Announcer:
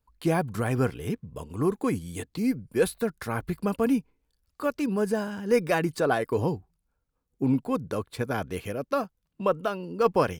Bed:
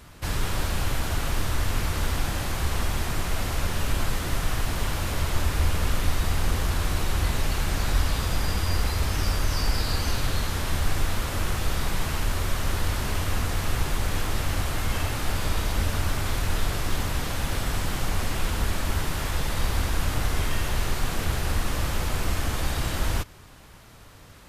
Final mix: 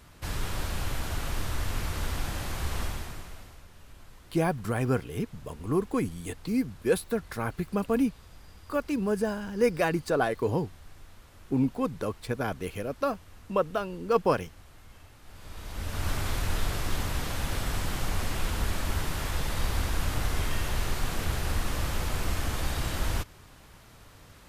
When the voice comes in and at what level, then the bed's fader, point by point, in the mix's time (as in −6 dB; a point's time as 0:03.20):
4.10 s, −1.5 dB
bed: 0:02.84 −5.5 dB
0:03.66 −25.5 dB
0:15.21 −25.5 dB
0:16.09 −3.5 dB